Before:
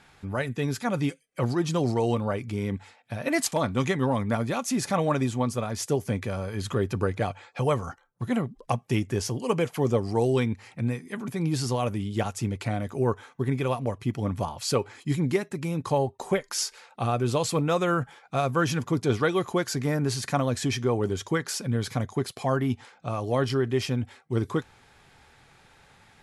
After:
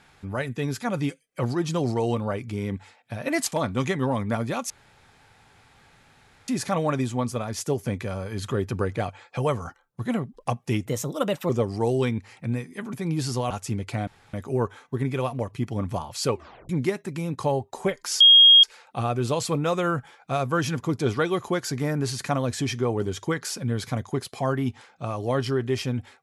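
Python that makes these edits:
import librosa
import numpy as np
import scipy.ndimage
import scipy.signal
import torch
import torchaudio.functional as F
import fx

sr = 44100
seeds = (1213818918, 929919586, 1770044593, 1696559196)

y = fx.edit(x, sr, fx.insert_room_tone(at_s=4.7, length_s=1.78),
    fx.speed_span(start_s=9.08, length_s=0.76, speed=1.2),
    fx.cut(start_s=11.85, length_s=0.38),
    fx.insert_room_tone(at_s=12.8, length_s=0.26),
    fx.tape_stop(start_s=14.81, length_s=0.35),
    fx.insert_tone(at_s=16.67, length_s=0.43, hz=3260.0, db=-9.0), tone=tone)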